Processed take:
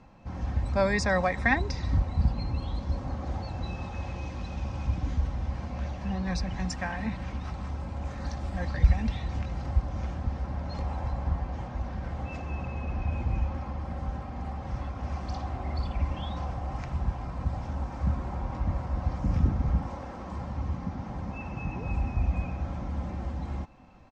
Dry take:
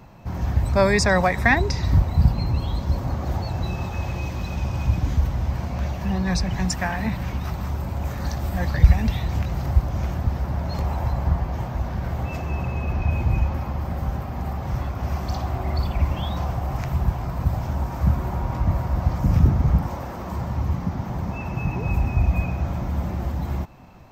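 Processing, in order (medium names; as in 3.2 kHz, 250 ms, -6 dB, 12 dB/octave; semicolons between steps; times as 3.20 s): Bessel low-pass 6 kHz, order 8; comb 3.8 ms, depth 36%; trim -7.5 dB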